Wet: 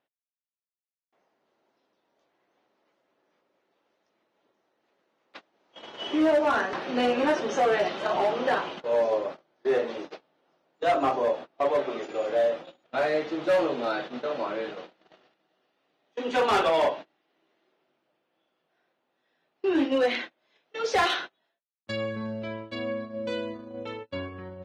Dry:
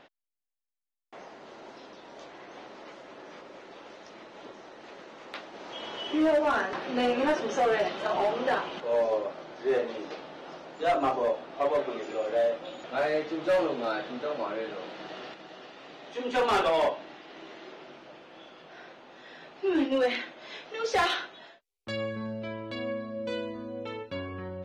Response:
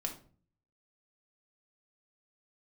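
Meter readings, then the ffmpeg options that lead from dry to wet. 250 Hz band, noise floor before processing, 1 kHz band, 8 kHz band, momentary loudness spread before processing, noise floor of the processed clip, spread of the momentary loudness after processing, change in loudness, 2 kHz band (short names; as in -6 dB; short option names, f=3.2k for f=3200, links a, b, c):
+2.0 dB, under -85 dBFS, +2.0 dB, n/a, 21 LU, under -85 dBFS, 14 LU, +2.5 dB, +2.0 dB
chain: -af "agate=range=-28dB:threshold=-37dB:ratio=16:detection=peak,highpass=45,volume=2dB"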